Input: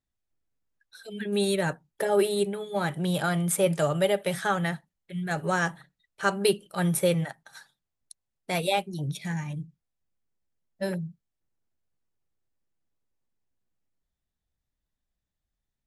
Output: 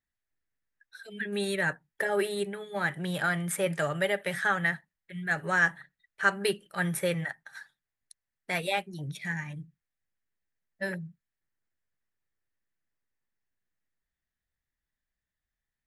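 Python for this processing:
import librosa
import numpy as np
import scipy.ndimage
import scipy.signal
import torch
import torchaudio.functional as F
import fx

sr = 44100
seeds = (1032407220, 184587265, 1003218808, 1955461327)

y = fx.peak_eq(x, sr, hz=1800.0, db=13.5, octaves=0.75)
y = y * 10.0 ** (-6.0 / 20.0)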